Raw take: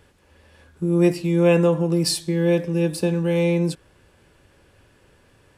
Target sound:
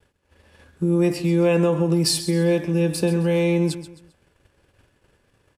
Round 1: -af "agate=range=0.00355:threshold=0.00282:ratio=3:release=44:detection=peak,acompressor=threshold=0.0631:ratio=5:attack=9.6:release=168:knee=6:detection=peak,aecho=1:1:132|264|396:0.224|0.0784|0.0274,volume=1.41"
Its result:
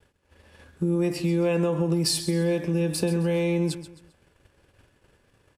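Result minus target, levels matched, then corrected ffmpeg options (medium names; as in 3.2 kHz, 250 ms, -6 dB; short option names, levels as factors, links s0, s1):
compression: peak gain reduction +5.5 dB
-af "agate=range=0.00355:threshold=0.00282:ratio=3:release=44:detection=peak,acompressor=threshold=0.141:ratio=5:attack=9.6:release=168:knee=6:detection=peak,aecho=1:1:132|264|396:0.224|0.0784|0.0274,volume=1.41"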